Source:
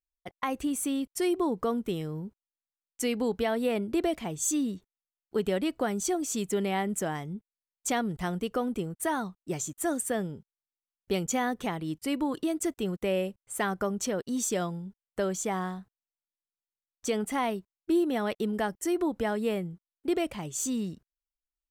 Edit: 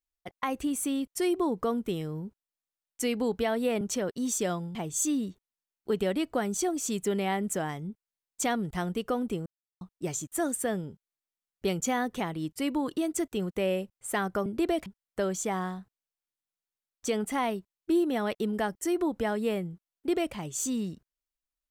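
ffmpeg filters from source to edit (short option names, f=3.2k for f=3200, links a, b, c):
-filter_complex "[0:a]asplit=7[a][b][c][d][e][f][g];[a]atrim=end=3.812[h];[b]atrim=start=13.918:end=14.862[i];[c]atrim=start=4.208:end=8.92,asetpts=PTS-STARTPTS,afade=t=out:st=4.708:d=0.004:c=hsin[j];[d]atrim=start=8.92:end=9.27,asetpts=PTS-STARTPTS,volume=0[k];[e]atrim=start=9.27:end=13.922,asetpts=PTS-STARTPTS,afade=t=in:d=0.004:c=hsin[l];[f]atrim=start=3.808:end=4.212[m];[g]atrim=start=14.858[n];[h][i]acrossfade=d=0.004:c1=hsin:c2=hsin[o];[j][k][l]concat=n=3:v=0:a=1[p];[o][p]acrossfade=d=0.004:c1=hsin:c2=hsin[q];[q][m]acrossfade=d=0.004:c1=hsin:c2=hsin[r];[r][n]acrossfade=d=0.004:c1=hsin:c2=hsin"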